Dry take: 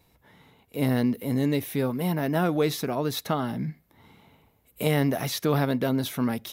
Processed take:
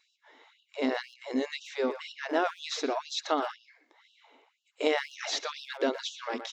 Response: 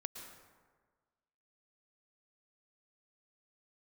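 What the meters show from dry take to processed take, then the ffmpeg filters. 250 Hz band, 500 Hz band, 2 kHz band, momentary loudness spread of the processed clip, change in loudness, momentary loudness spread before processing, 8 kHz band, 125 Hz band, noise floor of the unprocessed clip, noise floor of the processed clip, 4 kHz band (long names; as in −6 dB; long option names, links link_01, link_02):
−10.0 dB, −3.5 dB, −0.5 dB, 7 LU, −5.5 dB, 5 LU, −3.5 dB, below −40 dB, −65 dBFS, −74 dBFS, 0.0 dB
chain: -filter_complex "[0:a]aresample=16000,aresample=44100,asplit=2[link_01][link_02];[link_02]adelay=120,highpass=300,lowpass=3400,asoftclip=type=hard:threshold=-20.5dB,volume=-9dB[link_03];[link_01][link_03]amix=inputs=2:normalize=0,afftfilt=real='re*gte(b*sr/1024,240*pow(2700/240,0.5+0.5*sin(2*PI*2*pts/sr)))':imag='im*gte(b*sr/1024,240*pow(2700/240,0.5+0.5*sin(2*PI*2*pts/sr)))':win_size=1024:overlap=0.75"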